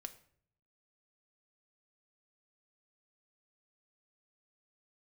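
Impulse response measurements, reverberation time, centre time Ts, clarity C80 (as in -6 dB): 0.60 s, 5 ms, 18.0 dB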